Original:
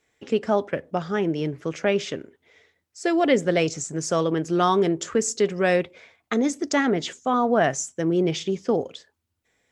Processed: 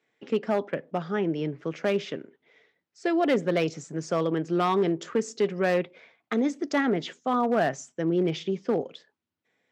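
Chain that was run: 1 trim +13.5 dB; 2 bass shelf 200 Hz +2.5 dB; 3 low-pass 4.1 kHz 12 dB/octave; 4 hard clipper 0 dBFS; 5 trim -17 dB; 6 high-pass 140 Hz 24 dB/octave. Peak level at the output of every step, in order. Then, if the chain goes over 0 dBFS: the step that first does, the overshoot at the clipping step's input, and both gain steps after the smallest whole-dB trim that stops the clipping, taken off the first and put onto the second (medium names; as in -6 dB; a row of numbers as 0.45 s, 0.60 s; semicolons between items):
+6.5 dBFS, +6.5 dBFS, +6.5 dBFS, 0.0 dBFS, -17.0 dBFS, -12.0 dBFS; step 1, 6.5 dB; step 1 +6.5 dB, step 5 -10 dB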